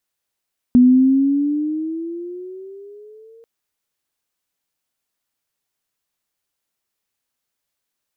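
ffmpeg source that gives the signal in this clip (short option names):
-f lavfi -i "aevalsrc='pow(10,(-6-37*t/2.69)/20)*sin(2*PI*245*2.69/(11*log(2)/12)*(exp(11*log(2)/12*t/2.69)-1))':d=2.69:s=44100"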